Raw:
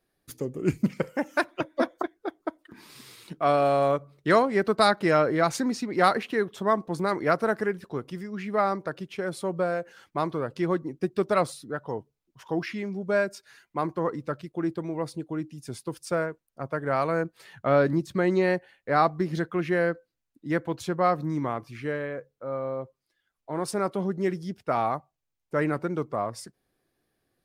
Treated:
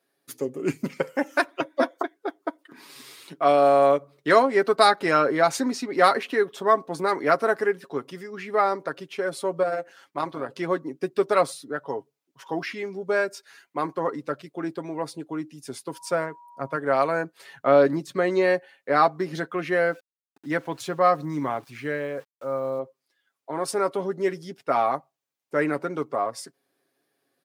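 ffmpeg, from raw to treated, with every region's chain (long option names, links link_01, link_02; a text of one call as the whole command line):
ffmpeg -i in.wav -filter_complex "[0:a]asettb=1/sr,asplit=3[link_01][link_02][link_03];[link_01]atrim=end=9.634[link_04];[link_02]atrim=start=9.63:end=10.49,asetpts=PTS-STARTPTS,afade=type=in:duration=0.004:curve=qsin,afade=type=out:start_time=0.856:duration=0.004:curve=qsin,tremolo=f=190:d=0.571,bandreject=frequency=440:width=7.7[link_05];[link_03]atrim=start=10.486[link_06];[link_04][link_05]acrossfade=duration=0.004:curve1=hsin:curve2=qsin[link_07];[link_07][link_06]acrossfade=duration=0.004:curve1=qsin:curve2=hsin,asettb=1/sr,asplit=3[link_08][link_09][link_10];[link_08]atrim=end=15.934[link_11];[link_09]atrim=start=15.93:end=16.76,asetpts=PTS-STARTPTS,afade=type=in:duration=0.004:curve=qsin,afade=type=out:start_time=0.826:duration=0.004:curve=qsin,asubboost=boost=5.5:cutoff=250,aeval=exprs='val(0)+0.00251*sin(2*PI*960*n/s)':channel_layout=same[link_12];[link_10]atrim=start=16.756[link_13];[link_11][link_12]acrossfade=duration=0.004:curve1=hsin:curve2=qsin[link_14];[link_14][link_13]acrossfade=duration=0.004:curve1=qsin:curve2=hsin,asettb=1/sr,asplit=3[link_15][link_16][link_17];[link_15]atrim=end=19.784[link_18];[link_16]atrim=start=19.78:end=22.79,asetpts=PTS-STARTPTS,afade=type=in:duration=0.004:curve=qsin,afade=type=out:start_time=3.006:duration=0.004:curve=qsin,asubboost=boost=3:cutoff=180,aeval=exprs='val(0)*gte(abs(val(0)),0.00266)':channel_layout=same[link_19];[link_17]atrim=start=22.786[link_20];[link_18][link_19]acrossfade=duration=0.004:curve1=hsin:curve2=qsin[link_21];[link_21][link_20]acrossfade=duration=0.004:curve1=qsin:curve2=hsin,highpass=270,aecho=1:1:7.3:0.47,volume=2.5dB" out.wav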